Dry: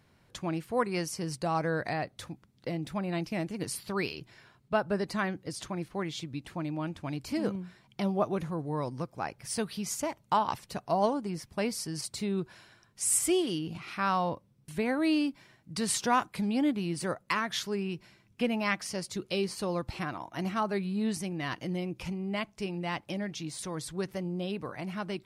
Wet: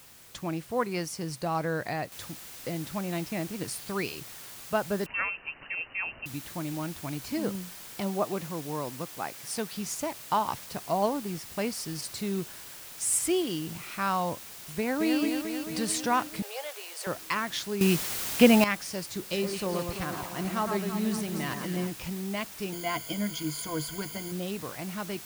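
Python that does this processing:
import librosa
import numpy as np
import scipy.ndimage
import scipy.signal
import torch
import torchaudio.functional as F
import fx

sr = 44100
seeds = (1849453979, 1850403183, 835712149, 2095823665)

y = fx.noise_floor_step(x, sr, seeds[0], at_s=2.12, before_db=-53, after_db=-45, tilt_db=0.0)
y = fx.freq_invert(y, sr, carrier_hz=2900, at=(5.06, 6.26))
y = fx.bessel_highpass(y, sr, hz=170.0, order=2, at=(8.0, 9.72))
y = fx.echo_throw(y, sr, start_s=14.78, length_s=0.41, ms=220, feedback_pct=70, wet_db=-5.0)
y = fx.steep_highpass(y, sr, hz=430.0, slope=72, at=(16.42, 17.07))
y = fx.echo_alternate(y, sr, ms=111, hz=1800.0, feedback_pct=74, wet_db=-5, at=(19.31, 21.9), fade=0.02)
y = fx.ripple_eq(y, sr, per_octave=1.8, db=16, at=(22.72, 24.32))
y = fx.edit(y, sr, fx.clip_gain(start_s=17.81, length_s=0.83, db=11.5), tone=tone)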